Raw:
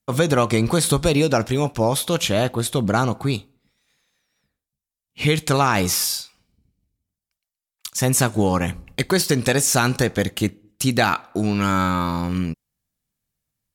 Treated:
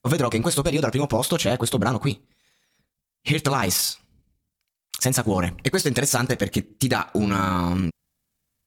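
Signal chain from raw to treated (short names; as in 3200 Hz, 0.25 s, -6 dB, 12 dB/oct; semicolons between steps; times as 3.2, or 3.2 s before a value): granular stretch 0.63×, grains 80 ms; compressor, threshold -22 dBFS, peak gain reduction 8.5 dB; gain +4.5 dB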